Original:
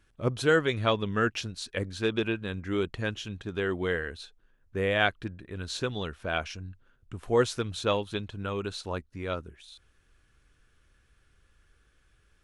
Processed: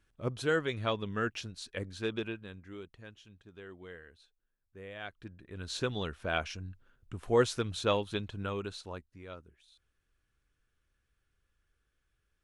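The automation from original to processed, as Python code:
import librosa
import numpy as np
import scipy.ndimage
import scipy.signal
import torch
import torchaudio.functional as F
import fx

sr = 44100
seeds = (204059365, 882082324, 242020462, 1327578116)

y = fx.gain(x, sr, db=fx.line((2.14, -6.5), (2.91, -19.0), (5.03, -19.0), (5.22, -11.5), (5.81, -2.0), (8.42, -2.0), (9.27, -13.5)))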